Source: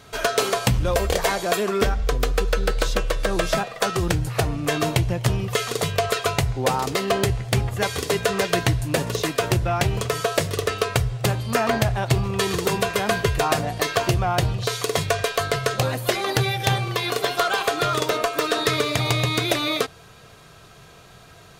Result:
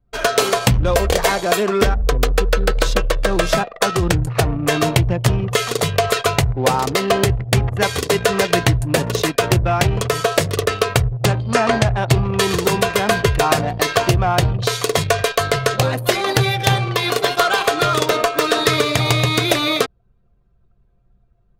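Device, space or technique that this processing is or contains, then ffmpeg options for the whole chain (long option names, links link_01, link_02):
voice memo with heavy noise removal: -filter_complex "[0:a]asettb=1/sr,asplit=3[link_01][link_02][link_03];[link_01]atrim=end=11.254[link_04];[link_02]atrim=start=11.25:end=11.98,asetpts=PTS-STARTPTS,afade=type=in:duration=0.004:curve=qsin,afade=type=out:start_time=0.726:duration=0.004:curve=qsin,lowpass=frequency=9400:width=0.5412,lowpass=frequency=9400:width=1.3066[link_05];[link_03]atrim=start=11.976[link_06];[link_04][link_05]acrossfade=duration=0.004:curve1=hsin:curve2=qsin[link_07];[link_07][link_06]acrossfade=duration=0.004:curve1=qsin:curve2=hsin,anlmdn=25.1,dynaudnorm=framelen=140:gausssize=3:maxgain=4dB,volume=2dB"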